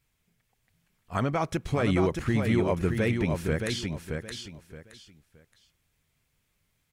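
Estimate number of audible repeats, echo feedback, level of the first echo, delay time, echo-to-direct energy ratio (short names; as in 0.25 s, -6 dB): 3, 25%, -5.0 dB, 0.621 s, -4.5 dB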